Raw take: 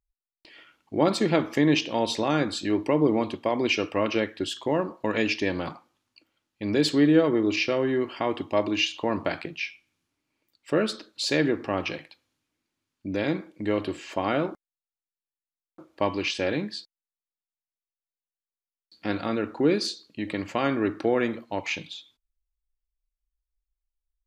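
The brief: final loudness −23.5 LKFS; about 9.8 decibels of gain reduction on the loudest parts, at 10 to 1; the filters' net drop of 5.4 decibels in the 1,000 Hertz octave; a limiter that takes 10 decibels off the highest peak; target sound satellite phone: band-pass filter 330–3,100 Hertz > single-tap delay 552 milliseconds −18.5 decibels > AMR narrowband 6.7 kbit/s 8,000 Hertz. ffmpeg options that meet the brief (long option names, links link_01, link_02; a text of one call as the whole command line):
ffmpeg -i in.wav -af "equalizer=frequency=1000:width_type=o:gain=-7,acompressor=threshold=-26dB:ratio=10,alimiter=limit=-24dB:level=0:latency=1,highpass=330,lowpass=3100,aecho=1:1:552:0.119,volume=16dB" -ar 8000 -c:a libopencore_amrnb -b:a 6700 out.amr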